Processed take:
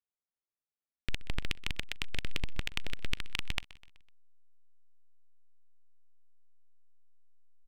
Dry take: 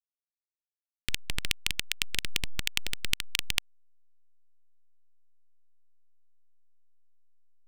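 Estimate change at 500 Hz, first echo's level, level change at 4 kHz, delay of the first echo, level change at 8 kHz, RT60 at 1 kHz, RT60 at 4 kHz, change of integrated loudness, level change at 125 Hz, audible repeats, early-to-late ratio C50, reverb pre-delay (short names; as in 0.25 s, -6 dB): +0.5 dB, -19.5 dB, -8.5 dB, 0.126 s, -14.5 dB, none, none, -7.0 dB, +1.0 dB, 3, none, none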